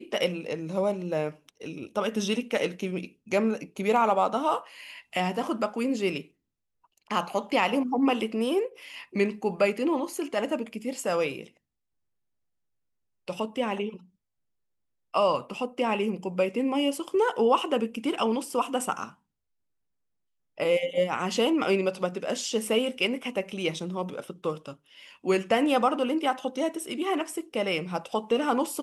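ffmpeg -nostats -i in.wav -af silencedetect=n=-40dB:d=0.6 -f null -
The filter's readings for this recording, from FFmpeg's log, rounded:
silence_start: 6.22
silence_end: 7.11 | silence_duration: 0.88
silence_start: 11.47
silence_end: 13.28 | silence_duration: 1.81
silence_start: 13.97
silence_end: 15.14 | silence_duration: 1.17
silence_start: 19.10
silence_end: 20.58 | silence_duration: 1.48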